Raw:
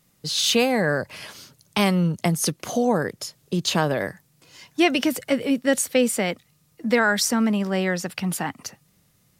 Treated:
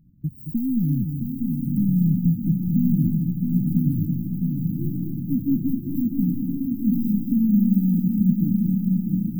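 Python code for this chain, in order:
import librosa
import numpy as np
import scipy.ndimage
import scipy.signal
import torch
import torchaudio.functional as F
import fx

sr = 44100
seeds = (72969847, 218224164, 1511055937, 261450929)

y = fx.wiener(x, sr, points=25)
y = fx.low_shelf(y, sr, hz=180.0, db=11.0)
y = 10.0 ** (-22.5 / 20.0) * np.tanh(y / 10.0 ** (-22.5 / 20.0))
y = fx.stiff_resonator(y, sr, f0_hz=110.0, decay_s=0.21, stiffness=0.008, at=(4.05, 5.18))
y = fx.echo_diffused(y, sr, ms=936, feedback_pct=40, wet_db=-4)
y = np.repeat(scipy.signal.resample_poly(y, 1, 6), 6)[:len(y)]
y = fx.brickwall_bandstop(y, sr, low_hz=330.0, high_hz=14000.0)
y = fx.echo_heads(y, sr, ms=222, heads='first and third', feedback_pct=43, wet_db=-7)
y = y * 10.0 ** (5.0 / 20.0)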